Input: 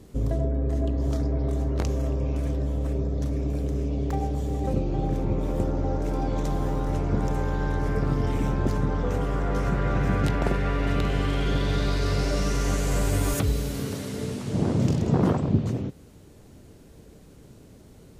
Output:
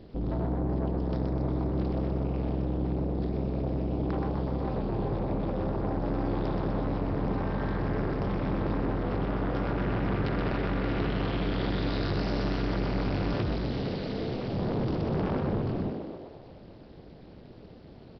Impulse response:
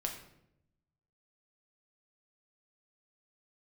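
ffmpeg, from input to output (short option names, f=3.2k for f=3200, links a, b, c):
-filter_complex "[0:a]aresample=11025,asoftclip=type=tanh:threshold=-26dB,aresample=44100,tremolo=f=240:d=0.947,asplit=9[a][b][c][d][e][f][g][h][i];[b]adelay=125,afreqshift=65,volume=-5.5dB[j];[c]adelay=250,afreqshift=130,volume=-10.1dB[k];[d]adelay=375,afreqshift=195,volume=-14.7dB[l];[e]adelay=500,afreqshift=260,volume=-19.2dB[m];[f]adelay=625,afreqshift=325,volume=-23.8dB[n];[g]adelay=750,afreqshift=390,volume=-28.4dB[o];[h]adelay=875,afreqshift=455,volume=-33dB[p];[i]adelay=1000,afreqshift=520,volume=-37.6dB[q];[a][j][k][l][m][n][o][p][q]amix=inputs=9:normalize=0,volume=3dB"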